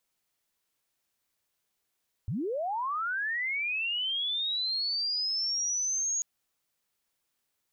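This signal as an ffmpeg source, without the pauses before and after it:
ffmpeg -f lavfi -i "aevalsrc='pow(10,(-29+2*t/3.94)/20)*sin(2*PI*(84*t+6616*t*t/(2*3.94)))':duration=3.94:sample_rate=44100" out.wav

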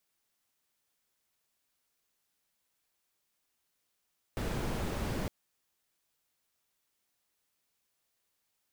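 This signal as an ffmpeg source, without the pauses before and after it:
ffmpeg -f lavfi -i "anoisesrc=color=brown:amplitude=0.0933:duration=0.91:sample_rate=44100:seed=1" out.wav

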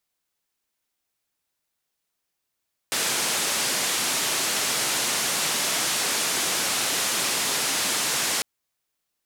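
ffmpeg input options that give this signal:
ffmpeg -f lavfi -i "anoisesrc=color=white:duration=5.5:sample_rate=44100:seed=1,highpass=frequency=160,lowpass=frequency=9400,volume=-16.5dB" out.wav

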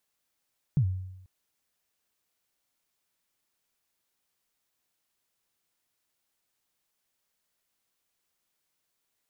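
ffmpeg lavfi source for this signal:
ffmpeg -f lavfi -i "aevalsrc='0.126*pow(10,-3*t/0.89)*sin(2*PI*(160*0.081/log(93/160)*(exp(log(93/160)*min(t,0.081)/0.081)-1)+93*max(t-0.081,0)))':duration=0.49:sample_rate=44100" out.wav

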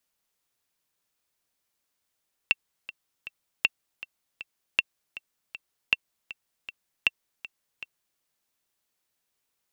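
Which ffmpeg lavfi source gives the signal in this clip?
ffmpeg -f lavfi -i "aevalsrc='pow(10,(-6.5-17.5*gte(mod(t,3*60/158),60/158))/20)*sin(2*PI*2700*mod(t,60/158))*exp(-6.91*mod(t,60/158)/0.03)':duration=5.69:sample_rate=44100" out.wav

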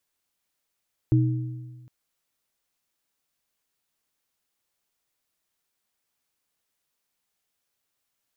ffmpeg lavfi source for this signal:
ffmpeg -f lavfi -i "aevalsrc='0.168*pow(10,-3*t/1.46)*sin(2*PI*124*t)+0.1*pow(10,-3*t/1.06)*sin(2*PI*314*t)':duration=0.76:sample_rate=44100" out.wav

